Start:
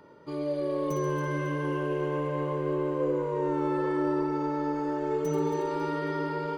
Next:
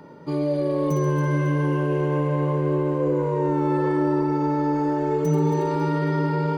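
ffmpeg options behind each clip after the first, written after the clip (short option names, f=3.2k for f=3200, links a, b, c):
-filter_complex "[0:a]equalizer=f=160:t=o:w=0.33:g=11,equalizer=f=250:t=o:w=0.33:g=7,equalizer=f=800:t=o:w=0.33:g=4,equalizer=f=1.25k:t=o:w=0.33:g=-3,equalizer=f=3.15k:t=o:w=0.33:g=-3,asplit=2[a][b];[b]alimiter=level_in=0.5dB:limit=-24dB:level=0:latency=1,volume=-0.5dB,volume=1.5dB[c];[a][c]amix=inputs=2:normalize=0"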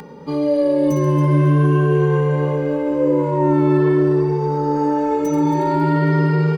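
-filter_complex "[0:a]asplit=2[a][b];[b]adelay=14,volume=-13.5dB[c];[a][c]amix=inputs=2:normalize=0,acompressor=mode=upward:threshold=-37dB:ratio=2.5,asplit=2[d][e];[e]adelay=2.1,afreqshift=0.44[f];[d][f]amix=inputs=2:normalize=1,volume=7.5dB"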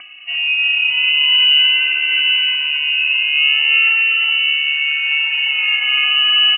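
-af "aecho=1:1:349:0.708,lowpass=f=2.6k:t=q:w=0.5098,lowpass=f=2.6k:t=q:w=0.6013,lowpass=f=2.6k:t=q:w=0.9,lowpass=f=2.6k:t=q:w=2.563,afreqshift=-3100"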